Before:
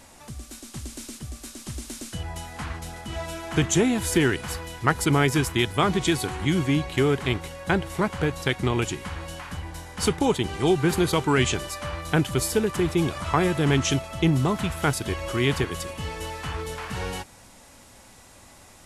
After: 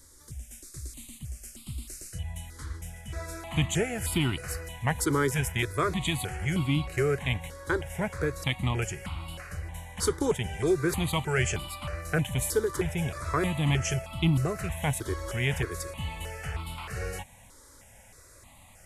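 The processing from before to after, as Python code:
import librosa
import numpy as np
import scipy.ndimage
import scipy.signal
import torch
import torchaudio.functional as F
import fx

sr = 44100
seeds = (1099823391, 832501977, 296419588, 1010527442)

y = fx.peak_eq(x, sr, hz=850.0, db=fx.steps((0.0, -14.0), (3.13, -3.5)), octaves=2.3)
y = fx.phaser_held(y, sr, hz=3.2, low_hz=720.0, high_hz=1700.0)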